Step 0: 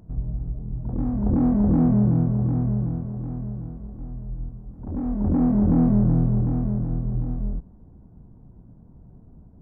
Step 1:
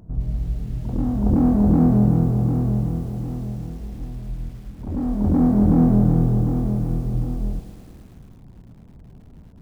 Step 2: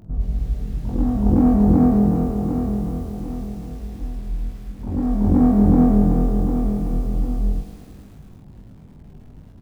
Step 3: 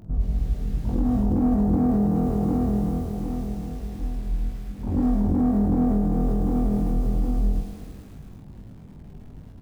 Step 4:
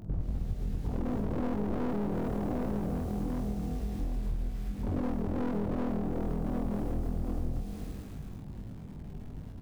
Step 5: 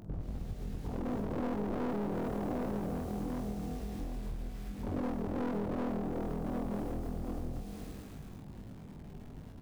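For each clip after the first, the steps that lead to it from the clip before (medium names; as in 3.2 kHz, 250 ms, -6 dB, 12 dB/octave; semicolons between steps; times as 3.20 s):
bit-crushed delay 108 ms, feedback 80%, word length 8-bit, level -12 dB; trim +3 dB
early reflections 20 ms -4 dB, 46 ms -7 dB
on a send at -14.5 dB: reverberation RT60 1.6 s, pre-delay 83 ms; on the sum: peak limiter -14.5 dBFS, peak gain reduction 9.5 dB
one-sided wavefolder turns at -24 dBFS; compression 3:1, threshold -30 dBFS, peak gain reduction 9 dB
bass shelf 190 Hz -7.5 dB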